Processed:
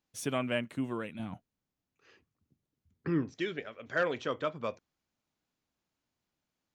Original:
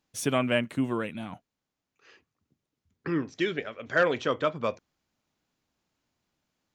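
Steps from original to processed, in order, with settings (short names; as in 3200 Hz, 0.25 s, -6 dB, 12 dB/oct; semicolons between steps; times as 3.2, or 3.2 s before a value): 1.19–3.35 low shelf 300 Hz +9.5 dB; gain -6.5 dB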